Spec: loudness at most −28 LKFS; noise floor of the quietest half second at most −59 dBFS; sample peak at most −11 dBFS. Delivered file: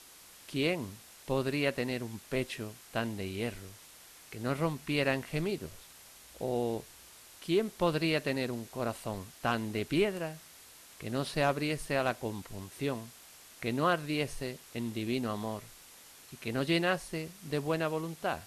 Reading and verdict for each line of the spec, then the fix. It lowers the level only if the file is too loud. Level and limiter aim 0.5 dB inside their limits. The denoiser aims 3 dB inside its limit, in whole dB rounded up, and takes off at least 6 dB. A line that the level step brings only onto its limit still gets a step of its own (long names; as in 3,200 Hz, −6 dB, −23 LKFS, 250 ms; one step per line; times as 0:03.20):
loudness −33.5 LKFS: in spec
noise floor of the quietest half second −55 dBFS: out of spec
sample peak −16.0 dBFS: in spec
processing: broadband denoise 7 dB, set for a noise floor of −55 dBFS